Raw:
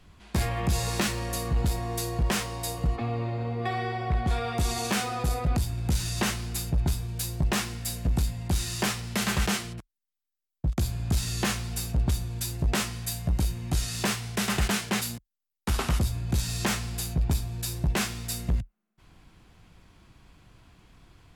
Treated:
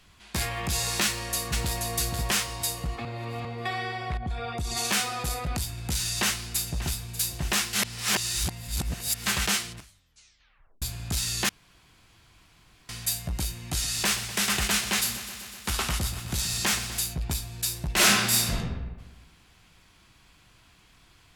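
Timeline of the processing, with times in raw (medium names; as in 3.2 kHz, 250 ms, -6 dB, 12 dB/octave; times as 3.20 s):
1.04–1.83 s: echo throw 480 ms, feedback 30%, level -4.5 dB
3.05–3.45 s: reverse
4.17–4.77 s: resonances exaggerated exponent 1.5
6.07–7.01 s: echo throw 590 ms, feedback 70%, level -14 dB
7.73–9.26 s: reverse
9.76 s: tape stop 1.06 s
11.49–12.89 s: room tone
13.68–16.99 s: bit-crushed delay 125 ms, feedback 80%, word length 9-bit, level -13 dB
17.93–18.54 s: reverb throw, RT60 1.2 s, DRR -8.5 dB
whole clip: tilt shelf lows -6 dB, about 1.1 kHz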